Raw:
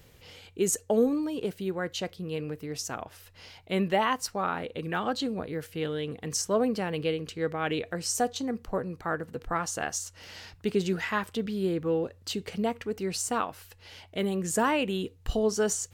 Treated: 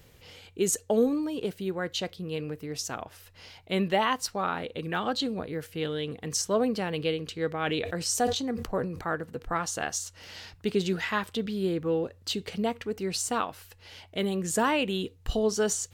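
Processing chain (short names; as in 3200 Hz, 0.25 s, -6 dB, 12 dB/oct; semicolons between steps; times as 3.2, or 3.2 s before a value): dynamic EQ 3700 Hz, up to +5 dB, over -50 dBFS, Q 1.9; 7.49–9.08 sustainer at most 61 dB/s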